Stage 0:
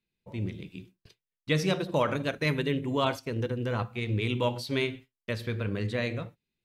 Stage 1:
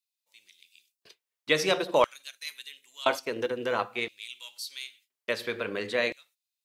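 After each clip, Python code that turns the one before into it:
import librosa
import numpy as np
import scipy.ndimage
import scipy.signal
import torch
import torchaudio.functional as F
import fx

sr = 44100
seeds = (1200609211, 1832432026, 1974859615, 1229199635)

y = fx.filter_lfo_highpass(x, sr, shape='square', hz=0.49, low_hz=450.0, high_hz=5400.0, q=0.78)
y = y * librosa.db_to_amplitude(5.5)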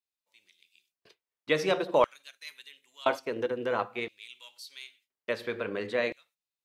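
y = fx.high_shelf(x, sr, hz=2800.0, db=-10.5)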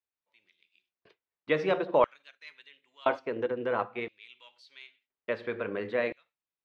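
y = scipy.signal.sosfilt(scipy.signal.butter(2, 2500.0, 'lowpass', fs=sr, output='sos'), x)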